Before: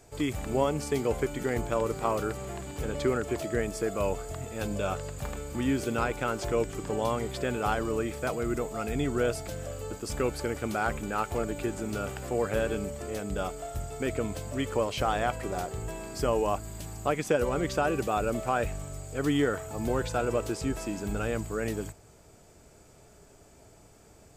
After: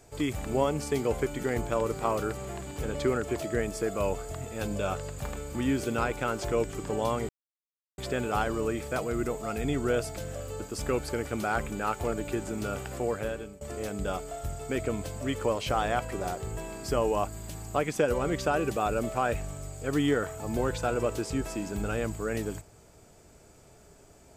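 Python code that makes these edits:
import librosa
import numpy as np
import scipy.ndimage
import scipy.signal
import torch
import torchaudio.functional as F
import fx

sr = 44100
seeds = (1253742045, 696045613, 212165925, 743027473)

y = fx.edit(x, sr, fx.insert_silence(at_s=7.29, length_s=0.69),
    fx.fade_out_to(start_s=12.28, length_s=0.64, floor_db=-20.0), tone=tone)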